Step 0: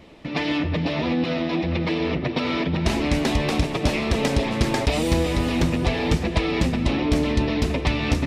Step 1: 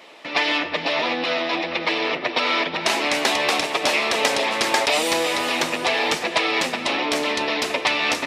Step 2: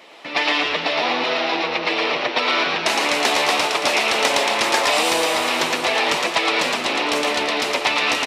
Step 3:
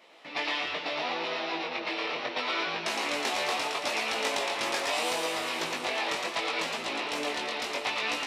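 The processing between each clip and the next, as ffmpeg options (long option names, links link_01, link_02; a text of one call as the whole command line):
ffmpeg -i in.wav -af "highpass=680,volume=8dB" out.wav
ffmpeg -i in.wav -filter_complex "[0:a]asplit=7[link_01][link_02][link_03][link_04][link_05][link_06][link_07];[link_02]adelay=113,afreqshift=140,volume=-3dB[link_08];[link_03]adelay=226,afreqshift=280,volume=-9.6dB[link_09];[link_04]adelay=339,afreqshift=420,volume=-16.1dB[link_10];[link_05]adelay=452,afreqshift=560,volume=-22.7dB[link_11];[link_06]adelay=565,afreqshift=700,volume=-29.2dB[link_12];[link_07]adelay=678,afreqshift=840,volume=-35.8dB[link_13];[link_01][link_08][link_09][link_10][link_11][link_12][link_13]amix=inputs=7:normalize=0" out.wav
ffmpeg -i in.wav -af "flanger=delay=17.5:depth=4.5:speed=0.73,volume=-8.5dB" out.wav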